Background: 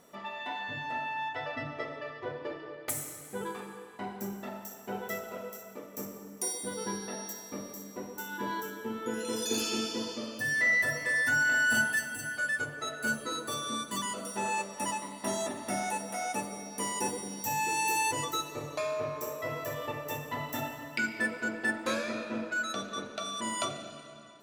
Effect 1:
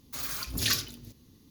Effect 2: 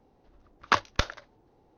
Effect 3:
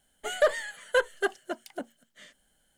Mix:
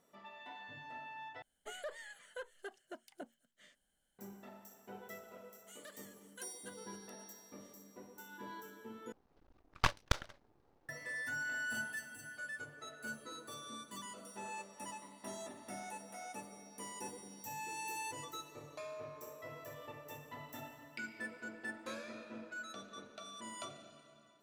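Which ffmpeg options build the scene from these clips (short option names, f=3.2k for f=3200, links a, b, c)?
-filter_complex "[3:a]asplit=2[a][b];[0:a]volume=-13.5dB[c];[a]alimiter=limit=-23.5dB:level=0:latency=1:release=239[d];[b]aderivative[e];[2:a]aeval=exprs='max(val(0),0)':c=same[f];[c]asplit=3[g][h][i];[g]atrim=end=1.424[j];[d]atrim=end=2.77,asetpts=PTS-STARTPTS,volume=-12dB[k];[h]atrim=start=4.186:end=9.124[l];[f]atrim=end=1.77,asetpts=PTS-STARTPTS,volume=-4.5dB[m];[i]atrim=start=10.886[n];[e]atrim=end=2.77,asetpts=PTS-STARTPTS,volume=-14.5dB,afade=t=in:d=0.004:c=hsin,afade=t=out:st=2.766:d=0.004:c=hsin,adelay=5430[o];[j][k]acrossfade=d=0.004:c1=hsin:c2=hsin[p];[p][l]acrossfade=d=0.004:c1=hsin:c2=hsin[q];[q][m]acrossfade=d=0.004:c1=hsin:c2=hsin[r];[r][n]acrossfade=d=0.004:c1=hsin:c2=hsin[s];[s][o]amix=inputs=2:normalize=0"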